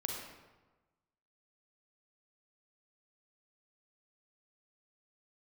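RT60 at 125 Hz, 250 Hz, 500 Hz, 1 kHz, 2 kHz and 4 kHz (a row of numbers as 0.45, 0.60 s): 1.4, 1.2, 1.2, 1.2, 0.95, 0.75 s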